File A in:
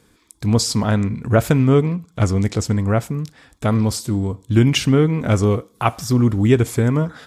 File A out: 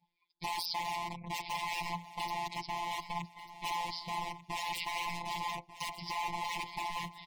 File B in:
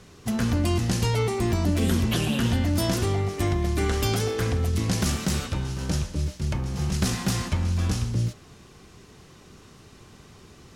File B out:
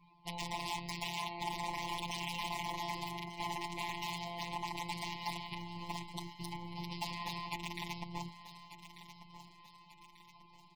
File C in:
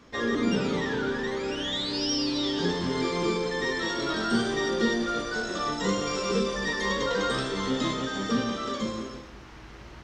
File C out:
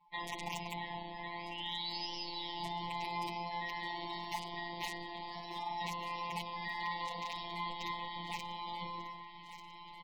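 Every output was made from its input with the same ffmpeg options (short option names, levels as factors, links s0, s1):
-af "aresample=11025,aresample=44100,aeval=exprs='(mod(7.5*val(0)+1,2)-1)/7.5':c=same,areverse,acompressor=mode=upward:threshold=0.00631:ratio=2.5,areverse,tremolo=f=270:d=0.857,acompressor=threshold=0.0282:ratio=3,lowshelf=f=710:t=q:w=3:g=-10,afftfilt=real='hypot(re,im)*cos(PI*b)':imag='0':win_size=1024:overlap=0.75,asoftclip=type=tanh:threshold=0.0891,asuperstop=centerf=1400:order=8:qfactor=1.4,afftdn=nr=22:nf=-56,aecho=1:1:1191|2382|3573|4764:0.178|0.0818|0.0376|0.0173,adynamicequalizer=threshold=0.00141:dfrequency=2800:dqfactor=0.7:tfrequency=2800:tqfactor=0.7:attack=5:release=100:ratio=0.375:range=2.5:mode=cutabove:tftype=highshelf,volume=1.68"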